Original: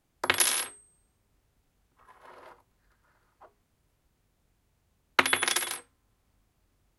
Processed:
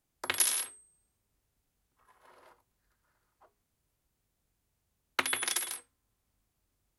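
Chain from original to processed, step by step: high shelf 4900 Hz +8.5 dB; gain -9 dB

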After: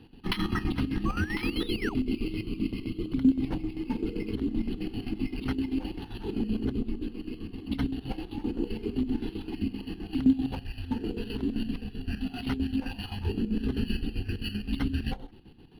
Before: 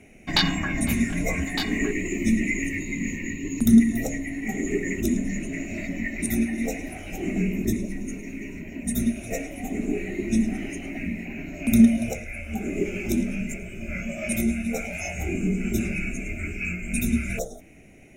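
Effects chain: in parallel at 0 dB: negative-ratio compressor -26 dBFS, ratio -0.5; on the sum: fixed phaser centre 2000 Hz, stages 6; painted sound rise, 1.21–2.24, 940–5900 Hz -29 dBFS; varispeed +15%; chopper 7.7 Hz, depth 65%, duty 55%; decimation joined by straight lines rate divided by 6×; gain -4.5 dB

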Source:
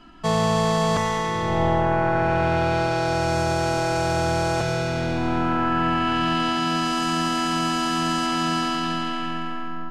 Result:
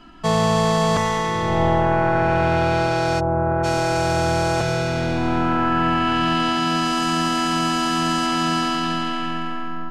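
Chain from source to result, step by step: 3.19–3.63 LPF 1000 Hz -> 1700 Hz 24 dB/oct; gain +2.5 dB

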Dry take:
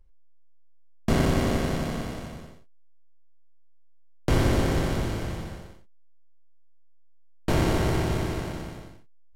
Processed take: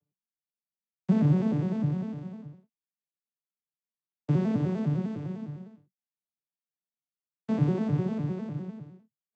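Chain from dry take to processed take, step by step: arpeggiated vocoder major triad, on D3, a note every 0.101 s; low shelf 220 Hz +11.5 dB; gain -6 dB

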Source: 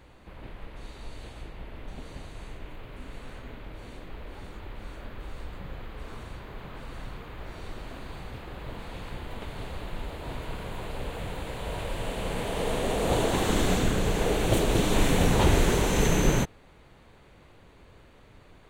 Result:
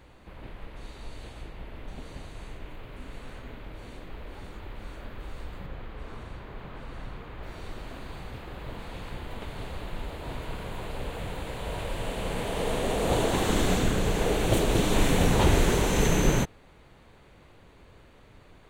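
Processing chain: 5.66–7.43 high shelf 4800 Hz -8 dB

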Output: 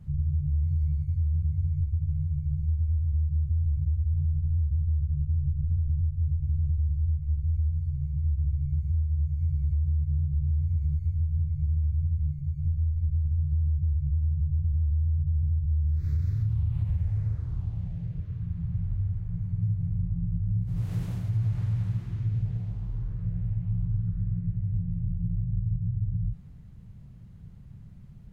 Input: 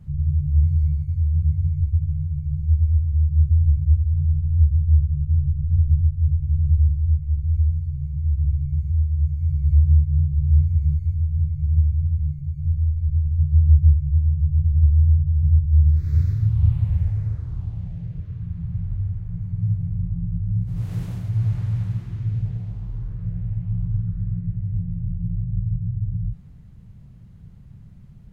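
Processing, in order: 12.93–14.98 dynamic EQ 100 Hz, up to +3 dB, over -27 dBFS, Q 3.4; limiter -14 dBFS, peak gain reduction 9 dB; compressor, threshold -20 dBFS, peak gain reduction 4.5 dB; gain -2.5 dB

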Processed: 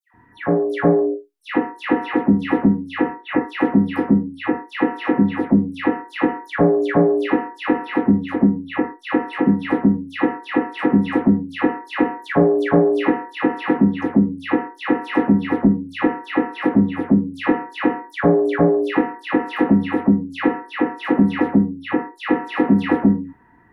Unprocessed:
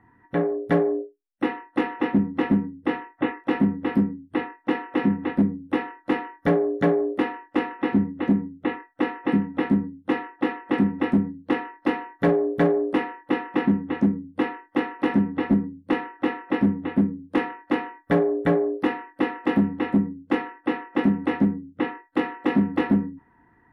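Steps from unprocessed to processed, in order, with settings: dispersion lows, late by 0.14 s, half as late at 1900 Hz; gain +5.5 dB

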